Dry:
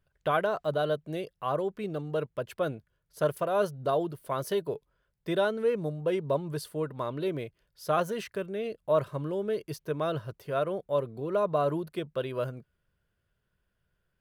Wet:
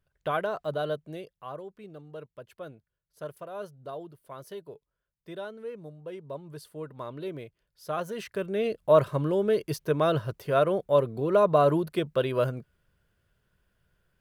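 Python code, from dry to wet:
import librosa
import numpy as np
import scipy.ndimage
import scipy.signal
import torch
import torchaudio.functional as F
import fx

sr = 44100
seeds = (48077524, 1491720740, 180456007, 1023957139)

y = fx.gain(x, sr, db=fx.line((0.93, -2.0), (1.66, -11.5), (6.19, -11.5), (7.02, -5.0), (7.98, -5.0), (8.61, 6.0)))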